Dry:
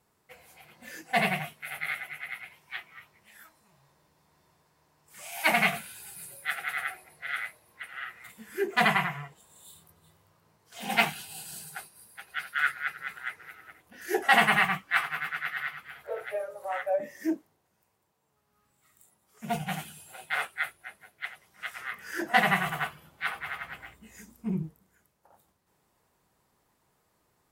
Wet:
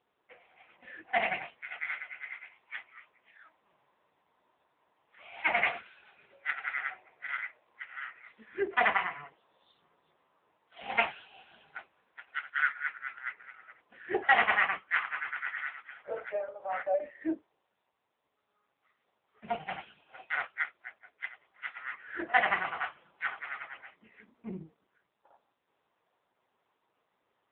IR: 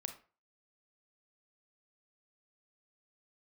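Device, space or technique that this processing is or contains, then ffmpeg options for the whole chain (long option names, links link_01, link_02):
telephone: -filter_complex "[0:a]asettb=1/sr,asplit=3[link_01][link_02][link_03];[link_01]atrim=end=19.454[link_04];[link_02]atrim=start=19.45:end=21.3,asetpts=PTS-STARTPTS,afade=type=in:duration=0.004:curve=qsin,afade=type=out:start_time=1.846:duration=0.004:curve=qsin,highshelf=frequency=8600:gain=-6[link_05];[link_03]atrim=start=21.296[link_06];[link_04][link_05]acrossfade=duration=0.004:curve1=hsin:curve2=qsin[link_07];[link_07][link_06]acrossfade=duration=0.004:curve1=qsin:curve2=hsin,highpass=340,lowpass=3400" -ar 8000 -c:a libopencore_amrnb -b:a 6700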